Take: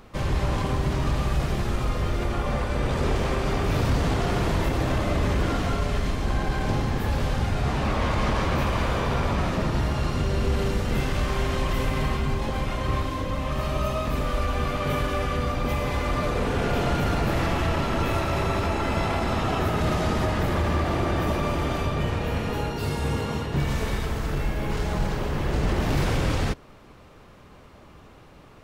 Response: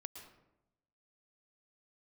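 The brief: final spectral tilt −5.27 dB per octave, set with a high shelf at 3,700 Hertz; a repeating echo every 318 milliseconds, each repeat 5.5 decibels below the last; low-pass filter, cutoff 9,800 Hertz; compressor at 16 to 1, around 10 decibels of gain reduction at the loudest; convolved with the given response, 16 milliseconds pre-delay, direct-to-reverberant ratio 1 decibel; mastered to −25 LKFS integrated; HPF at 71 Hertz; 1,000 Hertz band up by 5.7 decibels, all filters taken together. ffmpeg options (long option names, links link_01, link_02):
-filter_complex "[0:a]highpass=71,lowpass=9800,equalizer=frequency=1000:width_type=o:gain=7.5,highshelf=frequency=3700:gain=-4,acompressor=threshold=-29dB:ratio=16,aecho=1:1:318|636|954|1272|1590|1908|2226:0.531|0.281|0.149|0.079|0.0419|0.0222|0.0118,asplit=2[link_01][link_02];[1:a]atrim=start_sample=2205,adelay=16[link_03];[link_02][link_03]afir=irnorm=-1:irlink=0,volume=3.5dB[link_04];[link_01][link_04]amix=inputs=2:normalize=0,volume=4.5dB"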